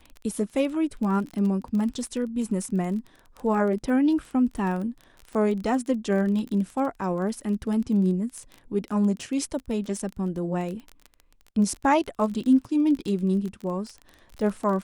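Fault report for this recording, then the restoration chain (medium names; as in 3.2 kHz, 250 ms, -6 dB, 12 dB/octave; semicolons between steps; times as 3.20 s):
crackle 22 per s -31 dBFS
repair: de-click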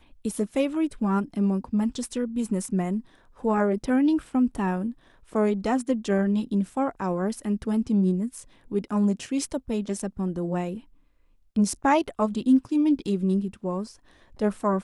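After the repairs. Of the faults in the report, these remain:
nothing left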